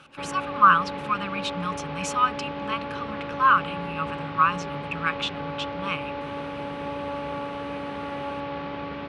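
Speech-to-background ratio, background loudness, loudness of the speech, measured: 7.5 dB, -33.0 LUFS, -25.5 LUFS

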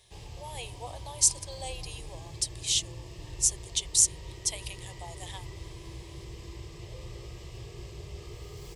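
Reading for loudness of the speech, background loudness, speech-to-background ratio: -27.0 LUFS, -44.5 LUFS, 17.5 dB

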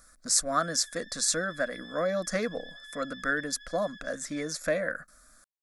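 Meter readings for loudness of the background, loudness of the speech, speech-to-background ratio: -47.0 LUFS, -30.0 LUFS, 17.0 dB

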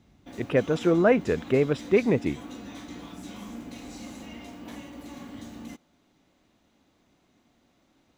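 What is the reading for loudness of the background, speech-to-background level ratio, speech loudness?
-42.0 LUFS, 18.0 dB, -24.0 LUFS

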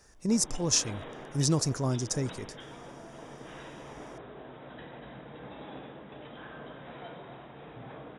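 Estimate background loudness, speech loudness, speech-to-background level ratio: -46.0 LUFS, -29.0 LUFS, 17.0 dB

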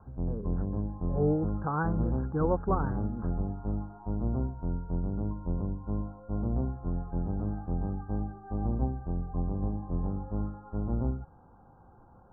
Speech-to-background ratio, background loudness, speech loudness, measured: 2.0 dB, -34.0 LUFS, -32.0 LUFS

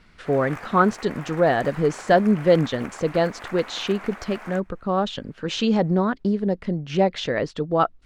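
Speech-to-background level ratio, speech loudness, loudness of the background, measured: 16.5 dB, -23.0 LUFS, -39.5 LUFS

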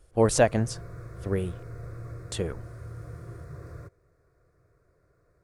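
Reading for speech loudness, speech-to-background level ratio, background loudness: -27.0 LUFS, 15.5 dB, -42.5 LUFS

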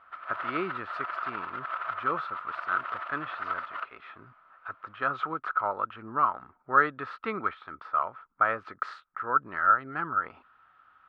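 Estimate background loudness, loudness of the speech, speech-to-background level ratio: -35.5 LUFS, -30.0 LUFS, 5.5 dB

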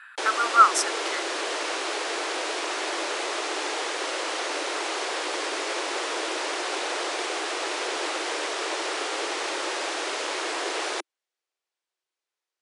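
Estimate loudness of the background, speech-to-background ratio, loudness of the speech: -28.5 LUFS, 7.5 dB, -21.0 LUFS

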